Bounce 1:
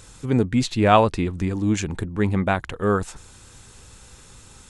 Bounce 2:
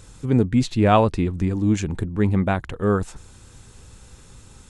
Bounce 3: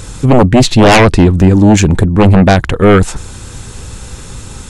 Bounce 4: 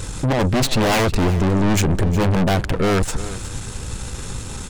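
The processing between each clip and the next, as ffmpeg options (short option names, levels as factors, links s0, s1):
-af "lowshelf=f=490:g=6.5,volume=0.668"
-af "aeval=exprs='0.631*sin(PI/2*3.98*val(0)/0.631)':c=same,volume=1.33"
-af "aeval=exprs='(tanh(6.31*val(0)+0.45)-tanh(0.45))/6.31':c=same,aecho=1:1:361:0.178"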